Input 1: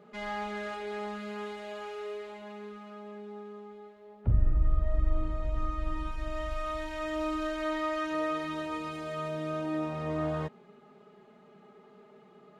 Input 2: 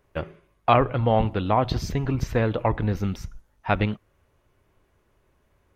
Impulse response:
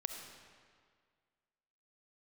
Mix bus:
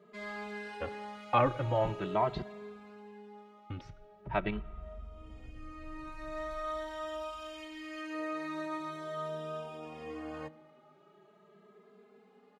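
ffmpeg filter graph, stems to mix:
-filter_complex "[0:a]alimiter=limit=0.0631:level=0:latency=1:release=338,bandreject=f=159.6:t=h:w=4,bandreject=f=319.2:t=h:w=4,bandreject=f=478.8:t=h:w=4,bandreject=f=638.4:t=h:w=4,bandreject=f=798:t=h:w=4,bandreject=f=957.6:t=h:w=4,bandreject=f=1117.2:t=h:w=4,bandreject=f=1276.8:t=h:w=4,bandreject=f=1436.4:t=h:w=4,bandreject=f=1596:t=h:w=4,bandreject=f=1755.6:t=h:w=4,bandreject=f=1915.2:t=h:w=4,bandreject=f=2074.8:t=h:w=4,bandreject=f=2234.4:t=h:w=4,bandreject=f=2394:t=h:w=4,bandreject=f=2553.6:t=h:w=4,bandreject=f=2713.2:t=h:w=4,bandreject=f=2872.8:t=h:w=4,bandreject=f=3032.4:t=h:w=4,bandreject=f=3192:t=h:w=4,bandreject=f=3351.6:t=h:w=4,bandreject=f=3511.2:t=h:w=4,bandreject=f=3670.8:t=h:w=4,bandreject=f=3830.4:t=h:w=4,bandreject=f=3990:t=h:w=4,volume=0.75,asplit=2[s0][s1];[s1]volume=0.15[s2];[1:a]lowpass=3200,adelay=650,volume=0.531,asplit=3[s3][s4][s5];[s3]atrim=end=2.42,asetpts=PTS-STARTPTS,afade=t=out:st=2.416:d=0.004:c=hsin[s6];[s4]atrim=start=2.42:end=3.7,asetpts=PTS-STARTPTS,volume=0[s7];[s5]atrim=start=3.7,asetpts=PTS-STARTPTS,afade=t=in:d=0.004:c=hsin[s8];[s6][s7][s8]concat=n=3:v=0:a=1,asplit=2[s9][s10];[s10]volume=0.141[s11];[2:a]atrim=start_sample=2205[s12];[s2][s11]amix=inputs=2:normalize=0[s13];[s13][s12]afir=irnorm=-1:irlink=0[s14];[s0][s9][s14]amix=inputs=3:normalize=0,lowshelf=f=120:g=-10,asplit=2[s15][s16];[s16]adelay=2.6,afreqshift=0.43[s17];[s15][s17]amix=inputs=2:normalize=1"

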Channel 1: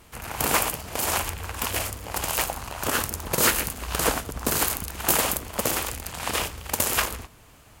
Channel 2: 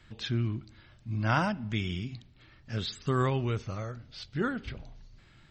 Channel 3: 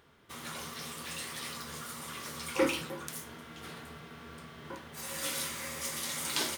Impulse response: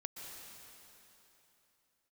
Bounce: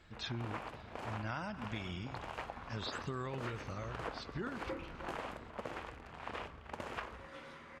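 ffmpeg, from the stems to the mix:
-filter_complex "[0:a]lowpass=2000,volume=0.251[s0];[1:a]bandreject=f=3100:w=20,volume=0.562,asplit=2[s1][s2];[s2]volume=0.251[s3];[2:a]lowpass=1700,adelay=2100,volume=0.376[s4];[3:a]atrim=start_sample=2205[s5];[s3][s5]afir=irnorm=-1:irlink=0[s6];[s0][s1][s4][s6]amix=inputs=4:normalize=0,lowshelf=f=230:g=-4.5,acompressor=threshold=0.0141:ratio=6"

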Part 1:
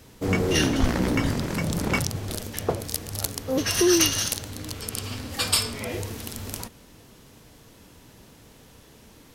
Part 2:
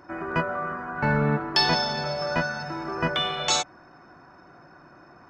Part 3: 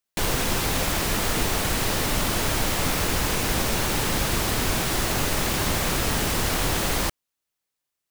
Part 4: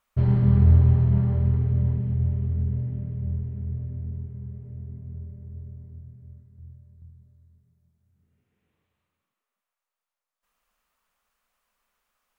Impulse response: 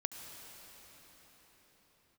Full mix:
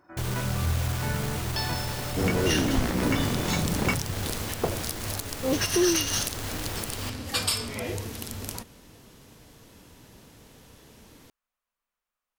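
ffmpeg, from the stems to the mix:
-filter_complex "[0:a]adelay=1950,volume=0.891[s0];[1:a]volume=0.282[s1];[2:a]aeval=exprs='0.251*sin(PI/2*2.51*val(0)/0.251)':c=same,volume=0.112[s2];[3:a]volume=0.251[s3];[s0][s1][s2][s3]amix=inputs=4:normalize=0,alimiter=limit=0.224:level=0:latency=1:release=169"

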